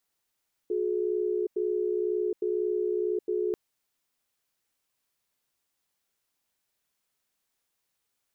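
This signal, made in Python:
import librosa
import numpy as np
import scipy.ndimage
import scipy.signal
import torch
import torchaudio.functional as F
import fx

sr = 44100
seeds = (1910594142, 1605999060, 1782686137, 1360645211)

y = fx.cadence(sr, length_s=2.84, low_hz=362.0, high_hz=424.0, on_s=0.77, off_s=0.09, level_db=-28.0)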